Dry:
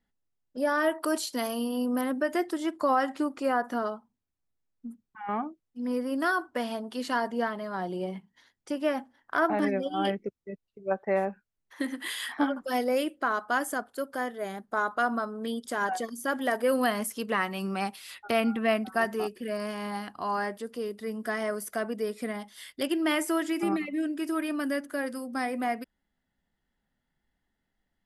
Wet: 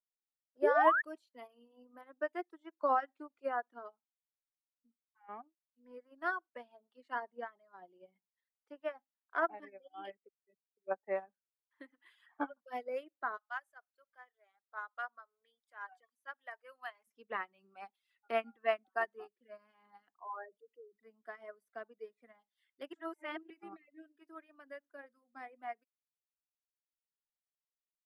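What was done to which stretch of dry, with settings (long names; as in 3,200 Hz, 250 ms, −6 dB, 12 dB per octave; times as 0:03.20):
0:00.62–0:01.02: sound drawn into the spectrogram rise 350–1,900 Hz −24 dBFS
0:08.80–0:10.87: low-shelf EQ 230 Hz −9.5 dB
0:13.37–0:17.07: high-pass filter 950 Hz
0:20.18–0:21.03: spectral envelope exaggerated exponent 3
0:22.93–0:23.50: reverse
whole clip: reverb reduction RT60 1.5 s; three-way crossover with the lows and the highs turned down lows −13 dB, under 330 Hz, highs −18 dB, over 2,900 Hz; expander for the loud parts 2.5 to 1, over −39 dBFS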